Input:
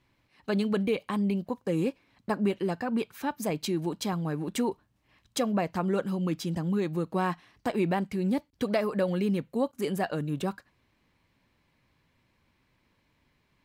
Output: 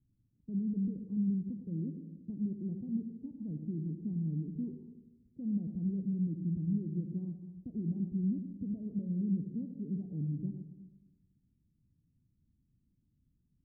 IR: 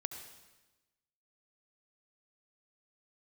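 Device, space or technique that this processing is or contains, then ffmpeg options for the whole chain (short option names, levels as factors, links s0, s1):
club heard from the street: -filter_complex "[0:a]alimiter=limit=0.0708:level=0:latency=1:release=23,lowpass=f=240:w=0.5412,lowpass=f=240:w=1.3066[s0];[1:a]atrim=start_sample=2205[s1];[s0][s1]afir=irnorm=-1:irlink=0"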